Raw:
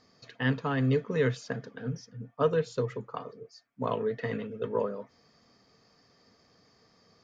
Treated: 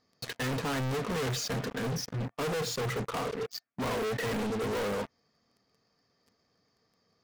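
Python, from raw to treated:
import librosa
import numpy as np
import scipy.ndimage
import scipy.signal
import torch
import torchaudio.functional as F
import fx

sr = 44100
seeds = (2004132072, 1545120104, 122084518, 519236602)

y = fx.leveller(x, sr, passes=5)
y = np.clip(y, -10.0 ** (-30.5 / 20.0), 10.0 ** (-30.5 / 20.0))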